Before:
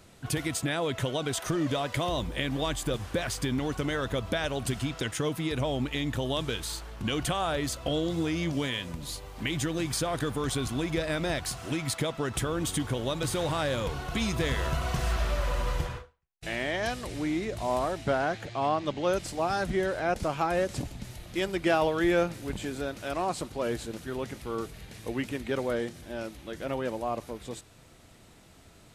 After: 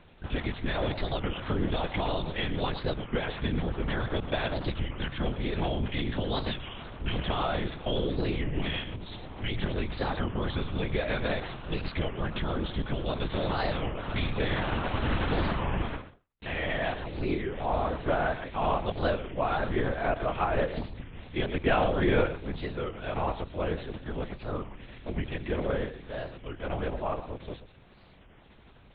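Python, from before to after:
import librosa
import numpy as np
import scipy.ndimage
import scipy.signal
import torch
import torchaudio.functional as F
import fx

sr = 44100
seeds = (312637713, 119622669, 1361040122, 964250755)

p1 = x + fx.echo_single(x, sr, ms=121, db=-12.0, dry=0)
p2 = fx.lpc_vocoder(p1, sr, seeds[0], excitation='whisper', order=8)
y = fx.record_warp(p2, sr, rpm=33.33, depth_cents=250.0)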